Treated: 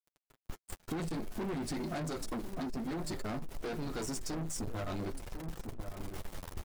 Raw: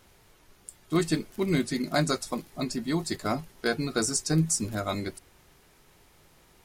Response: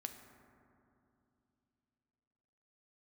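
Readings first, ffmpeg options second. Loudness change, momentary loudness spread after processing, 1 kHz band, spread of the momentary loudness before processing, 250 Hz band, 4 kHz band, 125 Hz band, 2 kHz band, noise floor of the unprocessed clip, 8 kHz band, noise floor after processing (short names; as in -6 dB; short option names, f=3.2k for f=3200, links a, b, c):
-11.0 dB, 9 LU, -8.0 dB, 9 LU, -9.0 dB, -12.5 dB, -9.5 dB, -12.0 dB, -60 dBFS, -13.0 dB, under -85 dBFS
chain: -filter_complex "[0:a]asubboost=boost=5.5:cutoff=53,acrusher=bits=7:mix=0:aa=0.000001,flanger=delay=5.4:depth=7.2:regen=-21:speed=0.53:shape=triangular,alimiter=level_in=1dB:limit=-24dB:level=0:latency=1:release=21,volume=-1dB,areverse,acompressor=mode=upward:threshold=-49dB:ratio=2.5,areverse,tiltshelf=f=1.3k:g=5,asoftclip=type=tanh:threshold=-37.5dB,agate=range=-21dB:threshold=-53dB:ratio=16:detection=peak,asplit=2[a][b];[b]adelay=1050,volume=-14dB,highshelf=f=4k:g=-23.6[c];[a][c]amix=inputs=2:normalize=0,acompressor=threshold=-52dB:ratio=16,volume=16.5dB"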